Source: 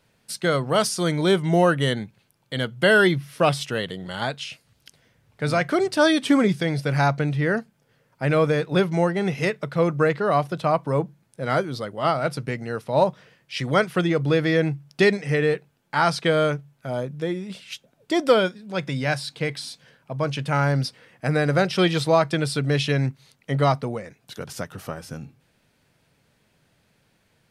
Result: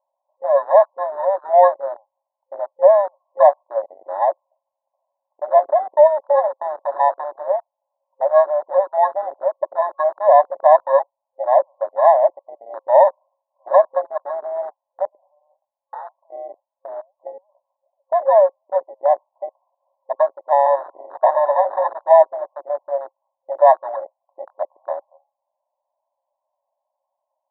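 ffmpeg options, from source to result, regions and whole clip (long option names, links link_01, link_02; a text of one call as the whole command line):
ffmpeg -i in.wav -filter_complex "[0:a]asettb=1/sr,asplit=3[link_01][link_02][link_03];[link_01]atrim=end=5.884[link_04];[link_02]atrim=start=5.88:end=7.43,asetpts=PTS-STARTPTS,afade=type=in:duration=0.004:curve=qsin,afade=type=out:start_time=1.546:duration=0.004:curve=qsin,bass=frequency=250:gain=5,treble=frequency=4000:gain=-2,aeval=exprs='clip(val(0),-1,0.0668)':channel_layout=same[link_05];[link_03]atrim=start=7.426[link_06];[link_04][link_05]acrossfade=duration=0.004:curve1=hsin:curve2=qsin[link_07];[link_07][link_06]acrossfade=duration=0.004:curve1=qsin:curve2=hsin,asettb=1/sr,asplit=3[link_08][link_09][link_10];[link_08]atrim=end=15.054[link_11];[link_09]atrim=start=15.05:end=17.27,asetpts=PTS-STARTPTS,afade=type=in:duration=0.004:curve=qsin,afade=type=out:start_time=2.216:duration=0.004:curve=qsin,flanger=delay=6.1:depth=6.9:regen=62:speed=1.8:shape=sinusoidal,acompressor=threshold=-35dB:ratio=16:attack=3.2:release=140:knee=1:detection=peak[link_12];[link_10]atrim=start=17.266[link_13];[link_11][link_12]acrossfade=duration=0.004:curve1=hsin:curve2=qsin[link_14];[link_14][link_13]acrossfade=duration=0.004:curve1=qsin:curve2=hsin,asettb=1/sr,asplit=3[link_15][link_16][link_17];[link_15]atrim=end=20.664[link_18];[link_16]atrim=start=20.66:end=21.93,asetpts=PTS-STARTPTS,afade=type=in:duration=0.004:curve=qsin,afade=type=out:start_time=1.266:duration=0.004:curve=qsin,lowshelf=frequency=470:gain=-9.5,acrossover=split=980|3200[link_19][link_20][link_21];[link_19]acompressor=threshold=-38dB:ratio=4[link_22];[link_20]acompressor=threshold=-33dB:ratio=4[link_23];[link_21]acompressor=threshold=-43dB:ratio=4[link_24];[link_22][link_23][link_24]amix=inputs=3:normalize=0,aeval=exprs='0.158*sin(PI/2*7.08*val(0)/0.158)':channel_layout=same[link_25];[link_17]atrim=start=21.926[link_26];[link_18][link_25]acrossfade=duration=0.004:curve1=hsin:curve2=qsin[link_27];[link_27][link_26]acrossfade=duration=0.004:curve1=qsin:curve2=hsin,afftfilt=real='re*between(b*sr/4096,530,1100)':imag='im*between(b*sr/4096,530,1100)':win_size=4096:overlap=0.75,afwtdn=0.0141,alimiter=level_in=13.5dB:limit=-1dB:release=50:level=0:latency=1,volume=-1dB" out.wav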